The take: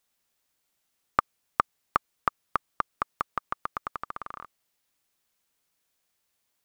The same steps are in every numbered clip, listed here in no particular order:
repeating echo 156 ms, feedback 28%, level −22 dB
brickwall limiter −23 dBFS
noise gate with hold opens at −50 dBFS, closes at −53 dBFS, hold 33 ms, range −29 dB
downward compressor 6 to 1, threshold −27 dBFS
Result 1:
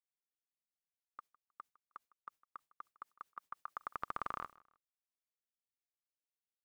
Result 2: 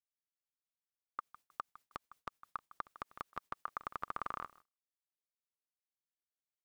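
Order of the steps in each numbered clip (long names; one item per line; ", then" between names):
downward compressor, then brickwall limiter, then noise gate with hold, then repeating echo
downward compressor, then repeating echo, then noise gate with hold, then brickwall limiter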